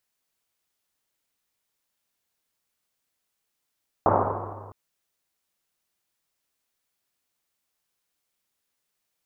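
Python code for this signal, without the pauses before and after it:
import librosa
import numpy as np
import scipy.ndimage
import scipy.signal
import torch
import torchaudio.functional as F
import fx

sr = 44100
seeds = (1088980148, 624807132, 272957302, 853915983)

y = fx.risset_drum(sr, seeds[0], length_s=0.66, hz=100.0, decay_s=2.54, noise_hz=730.0, noise_width_hz=880.0, noise_pct=75)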